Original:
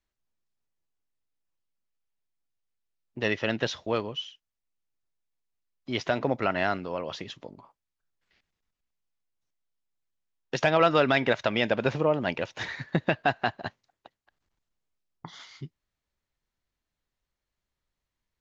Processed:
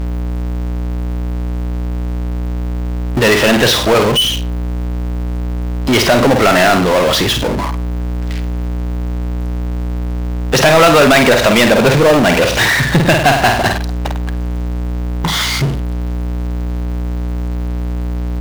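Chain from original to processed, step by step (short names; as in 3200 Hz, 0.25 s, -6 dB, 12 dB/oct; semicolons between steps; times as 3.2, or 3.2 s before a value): flutter echo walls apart 8.6 m, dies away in 0.28 s; hum 60 Hz, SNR 22 dB; power-law curve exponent 0.35; gain +6 dB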